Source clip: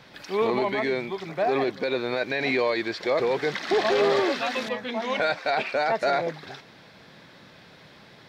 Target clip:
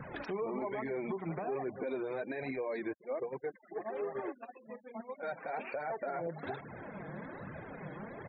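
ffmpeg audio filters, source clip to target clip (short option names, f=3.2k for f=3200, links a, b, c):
-filter_complex "[0:a]acompressor=threshold=-33dB:ratio=4,aemphasis=mode=reproduction:type=75fm,aecho=1:1:292:0.0631,flanger=delay=0.5:depth=6.1:regen=7:speed=1.2:shape=triangular,bandreject=f=60:t=h:w=6,bandreject=f=120:t=h:w=6,bandreject=f=180:t=h:w=6,bandreject=f=240:t=h:w=6,bandreject=f=300:t=h:w=6,alimiter=level_in=14dB:limit=-24dB:level=0:latency=1:release=285,volume=-14dB,asoftclip=type=hard:threshold=-39.5dB,highshelf=f=2.2k:g=-9.5,asettb=1/sr,asplit=3[a][b][c];[a]atrim=end=2.934[d];[b]atrim=start=2.93:end=5.23,asetpts=PTS-STARTPTS,afade=t=in:d=0.004:c=qsin,afade=t=out:st=2.296:d=0.004:c=qsin,agate=range=-17dB:threshold=-46dB:ratio=16:detection=peak[e];[c]atrim=start=5.226[f];[d][e]acrossfade=d=0.004:c1=hsin:c2=qsin[g];[g][f]acrossfade=d=0.004:c1=qsin:c2=hsin,afftfilt=real='re*gte(hypot(re,im),0.00126)':imag='im*gte(hypot(re,im),0.00126)':win_size=1024:overlap=0.75,volume=10.5dB"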